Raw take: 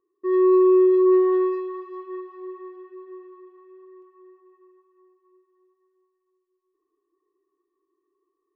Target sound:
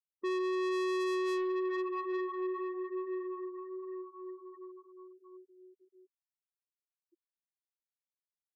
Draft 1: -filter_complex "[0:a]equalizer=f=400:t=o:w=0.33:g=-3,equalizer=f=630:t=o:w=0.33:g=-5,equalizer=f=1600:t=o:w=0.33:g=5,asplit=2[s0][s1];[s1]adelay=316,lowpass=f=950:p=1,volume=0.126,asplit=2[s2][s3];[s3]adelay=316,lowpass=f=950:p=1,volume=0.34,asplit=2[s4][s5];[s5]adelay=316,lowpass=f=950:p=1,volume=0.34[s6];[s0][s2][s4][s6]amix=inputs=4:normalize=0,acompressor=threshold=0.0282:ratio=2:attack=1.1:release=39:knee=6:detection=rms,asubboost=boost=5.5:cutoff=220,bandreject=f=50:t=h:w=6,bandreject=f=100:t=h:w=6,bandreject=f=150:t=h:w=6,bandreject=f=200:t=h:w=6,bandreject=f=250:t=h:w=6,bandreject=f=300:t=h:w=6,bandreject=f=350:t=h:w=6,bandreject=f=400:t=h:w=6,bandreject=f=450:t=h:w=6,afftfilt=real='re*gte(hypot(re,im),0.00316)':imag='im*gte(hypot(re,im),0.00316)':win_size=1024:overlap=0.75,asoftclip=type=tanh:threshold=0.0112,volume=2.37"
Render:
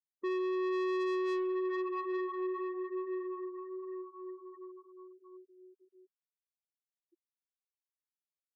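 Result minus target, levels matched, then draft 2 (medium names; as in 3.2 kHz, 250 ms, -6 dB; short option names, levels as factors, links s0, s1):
compression: peak gain reduction +5 dB
-filter_complex "[0:a]equalizer=f=400:t=o:w=0.33:g=-3,equalizer=f=630:t=o:w=0.33:g=-5,equalizer=f=1600:t=o:w=0.33:g=5,asplit=2[s0][s1];[s1]adelay=316,lowpass=f=950:p=1,volume=0.126,asplit=2[s2][s3];[s3]adelay=316,lowpass=f=950:p=1,volume=0.34,asplit=2[s4][s5];[s5]adelay=316,lowpass=f=950:p=1,volume=0.34[s6];[s0][s2][s4][s6]amix=inputs=4:normalize=0,acompressor=threshold=0.0944:ratio=2:attack=1.1:release=39:knee=6:detection=rms,asubboost=boost=5.5:cutoff=220,bandreject=f=50:t=h:w=6,bandreject=f=100:t=h:w=6,bandreject=f=150:t=h:w=6,bandreject=f=200:t=h:w=6,bandreject=f=250:t=h:w=6,bandreject=f=300:t=h:w=6,bandreject=f=350:t=h:w=6,bandreject=f=400:t=h:w=6,bandreject=f=450:t=h:w=6,afftfilt=real='re*gte(hypot(re,im),0.00316)':imag='im*gte(hypot(re,im),0.00316)':win_size=1024:overlap=0.75,asoftclip=type=tanh:threshold=0.0112,volume=2.37"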